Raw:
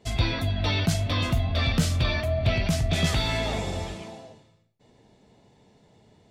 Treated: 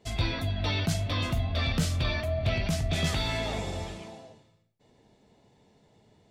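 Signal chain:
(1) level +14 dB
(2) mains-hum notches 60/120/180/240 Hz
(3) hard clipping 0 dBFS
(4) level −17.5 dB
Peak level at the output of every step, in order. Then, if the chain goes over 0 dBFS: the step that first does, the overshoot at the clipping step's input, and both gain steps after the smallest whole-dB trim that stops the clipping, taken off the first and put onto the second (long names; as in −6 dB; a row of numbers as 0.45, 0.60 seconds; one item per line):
+3.5, +3.5, 0.0, −17.5 dBFS
step 1, 3.5 dB
step 1 +10 dB, step 4 −13.5 dB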